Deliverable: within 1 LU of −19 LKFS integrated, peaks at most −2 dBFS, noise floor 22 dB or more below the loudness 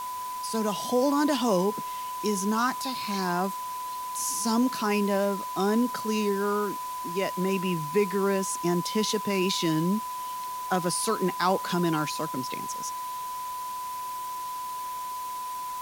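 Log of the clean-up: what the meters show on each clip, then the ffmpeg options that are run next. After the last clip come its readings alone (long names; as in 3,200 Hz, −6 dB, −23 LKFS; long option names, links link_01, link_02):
interfering tone 1,000 Hz; level of the tone −32 dBFS; background noise floor −35 dBFS; target noise floor −50 dBFS; integrated loudness −28.0 LKFS; sample peak −11.5 dBFS; target loudness −19.0 LKFS
→ -af "bandreject=frequency=1000:width=30"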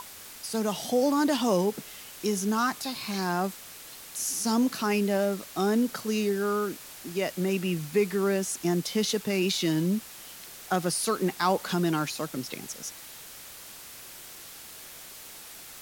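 interfering tone none found; background noise floor −45 dBFS; target noise floor −50 dBFS
→ -af "afftdn=noise_reduction=6:noise_floor=-45"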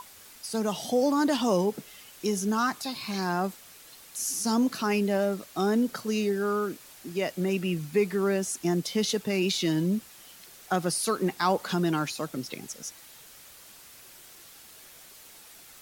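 background noise floor −51 dBFS; integrated loudness −28.0 LKFS; sample peak −11.5 dBFS; target loudness −19.0 LKFS
→ -af "volume=9dB"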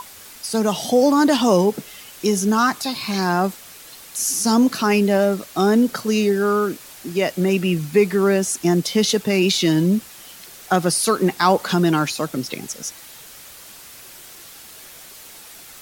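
integrated loudness −19.0 LKFS; sample peak −2.5 dBFS; background noise floor −42 dBFS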